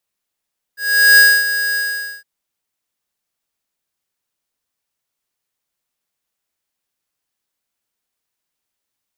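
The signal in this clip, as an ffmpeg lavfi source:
-f lavfi -i "aevalsrc='0.447*(2*lt(mod(1650*t,1),0.5)-1)':d=1.462:s=44100,afade=t=in:d=0.405,afade=t=out:st=0.405:d=0.26:silence=0.266,afade=t=out:st=0.99:d=0.472"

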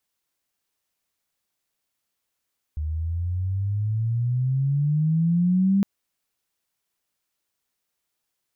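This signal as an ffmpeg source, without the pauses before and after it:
-f lavfi -i "aevalsrc='pow(10,(-16+8.5*(t/3.06-1))/20)*sin(2*PI*75*3.06/(17*log(2)/12)*(exp(17*log(2)/12*t/3.06)-1))':d=3.06:s=44100"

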